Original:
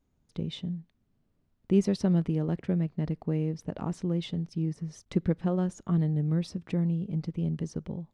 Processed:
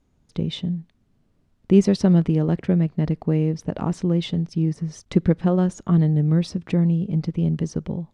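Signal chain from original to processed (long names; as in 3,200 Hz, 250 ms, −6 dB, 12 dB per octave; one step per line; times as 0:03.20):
low-pass filter 9,900 Hz 12 dB per octave
level +8.5 dB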